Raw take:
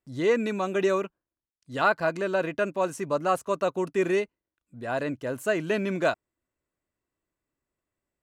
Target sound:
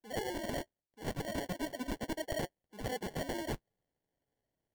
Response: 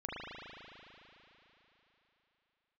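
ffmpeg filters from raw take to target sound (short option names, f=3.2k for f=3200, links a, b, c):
-af "asetrate=76440,aresample=44100,flanger=delay=6.2:depth=1.2:regen=-50:speed=0.37:shape=triangular,areverse,acompressor=threshold=-39dB:ratio=5,areverse,acrusher=samples=35:mix=1:aa=0.000001,aeval=exprs='(mod(44.7*val(0)+1,2)-1)/44.7':c=same,volume=3.5dB"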